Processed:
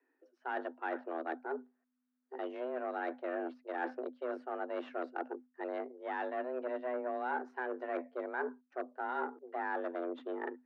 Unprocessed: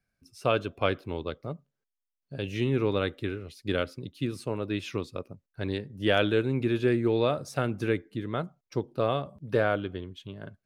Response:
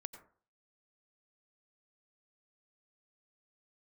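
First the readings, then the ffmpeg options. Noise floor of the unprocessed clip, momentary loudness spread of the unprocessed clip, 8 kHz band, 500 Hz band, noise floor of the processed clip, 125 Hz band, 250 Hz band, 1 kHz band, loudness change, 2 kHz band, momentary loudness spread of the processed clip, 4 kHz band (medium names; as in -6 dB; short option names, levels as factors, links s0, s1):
under -85 dBFS, 14 LU, under -30 dB, -9.5 dB, -82 dBFS, under -40 dB, -12.5 dB, -2.5 dB, -10.0 dB, -7.0 dB, 5 LU, -23.5 dB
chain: -af "areverse,acompressor=threshold=0.0126:ratio=16,areverse,aeval=exprs='0.0299*(cos(1*acos(clip(val(0)/0.0299,-1,1)))-cos(1*PI/2))+0.00422*(cos(5*acos(clip(val(0)/0.0299,-1,1)))-cos(5*PI/2))+0.00335*(cos(6*acos(clip(val(0)/0.0299,-1,1)))-cos(6*PI/2))+0.00299*(cos(7*acos(clip(val(0)/0.0299,-1,1)))-cos(7*PI/2))':c=same,lowpass=f=1300:t=q:w=2,afreqshift=250,volume=1.26"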